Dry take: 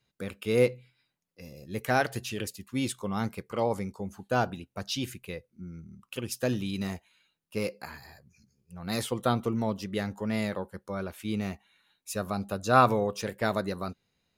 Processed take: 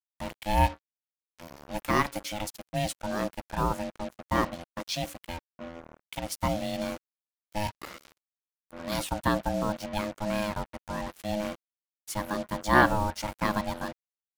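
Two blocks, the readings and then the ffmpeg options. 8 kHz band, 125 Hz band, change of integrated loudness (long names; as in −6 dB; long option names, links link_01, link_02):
+1.0 dB, −1.0 dB, 0.0 dB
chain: -af "aeval=exprs='val(0)*sin(2*PI*420*n/s)':channel_layout=same,acrusher=bits=6:mix=0:aa=0.5,volume=3dB"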